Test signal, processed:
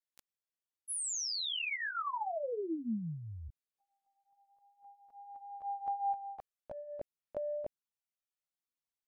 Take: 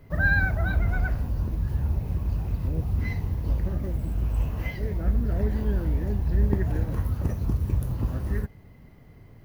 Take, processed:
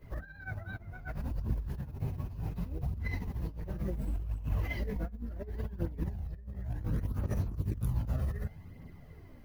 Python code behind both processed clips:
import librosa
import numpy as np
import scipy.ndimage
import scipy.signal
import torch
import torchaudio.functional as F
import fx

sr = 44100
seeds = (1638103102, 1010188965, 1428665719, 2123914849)

y = fx.over_compress(x, sr, threshold_db=-29.0, ratio=-0.5)
y = fx.chorus_voices(y, sr, voices=2, hz=0.34, base_ms=16, depth_ms=4.6, mix_pct=70)
y = y * librosa.db_to_amplitude(-4.0)